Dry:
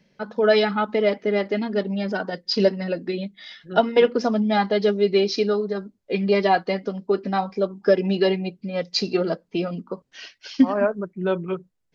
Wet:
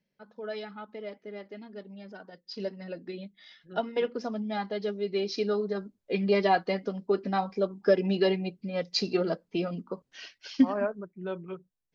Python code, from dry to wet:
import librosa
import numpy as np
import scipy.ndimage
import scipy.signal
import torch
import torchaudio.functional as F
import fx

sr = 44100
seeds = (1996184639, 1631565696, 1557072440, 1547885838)

y = fx.gain(x, sr, db=fx.line((2.37, -19.5), (2.98, -12.0), (5.06, -12.0), (5.63, -5.0), (10.6, -5.0), (11.09, -12.0)))